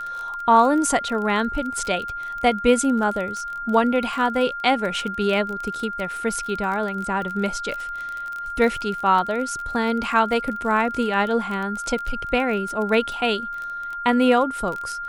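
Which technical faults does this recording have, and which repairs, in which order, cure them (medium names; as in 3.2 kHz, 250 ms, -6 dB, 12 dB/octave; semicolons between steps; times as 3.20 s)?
crackle 25 per s -27 dBFS
whine 1.4 kHz -28 dBFS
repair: de-click; band-stop 1.4 kHz, Q 30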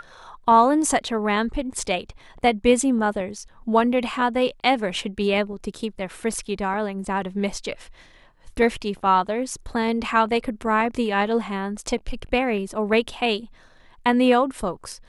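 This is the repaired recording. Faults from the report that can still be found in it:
nothing left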